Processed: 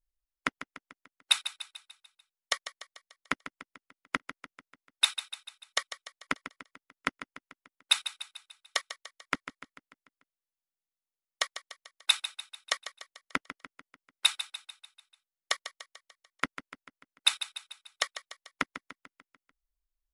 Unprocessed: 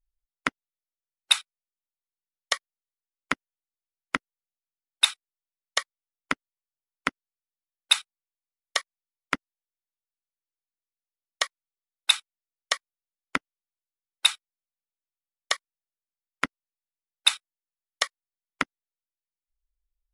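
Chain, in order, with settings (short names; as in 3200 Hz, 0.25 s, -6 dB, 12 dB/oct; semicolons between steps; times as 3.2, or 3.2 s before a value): feedback echo 0.147 s, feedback 53%, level -12 dB; gain -4 dB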